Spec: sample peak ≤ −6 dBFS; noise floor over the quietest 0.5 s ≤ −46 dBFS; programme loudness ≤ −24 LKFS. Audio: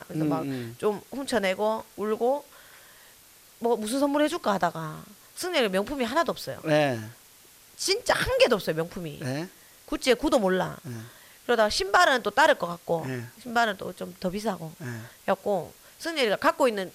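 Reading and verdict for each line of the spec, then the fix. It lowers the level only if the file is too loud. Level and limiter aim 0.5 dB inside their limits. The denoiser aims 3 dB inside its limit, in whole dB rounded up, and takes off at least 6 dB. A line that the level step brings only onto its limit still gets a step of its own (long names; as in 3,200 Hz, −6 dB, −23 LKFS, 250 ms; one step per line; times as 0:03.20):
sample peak −10.0 dBFS: in spec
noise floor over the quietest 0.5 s −54 dBFS: in spec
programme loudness −26.5 LKFS: in spec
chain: no processing needed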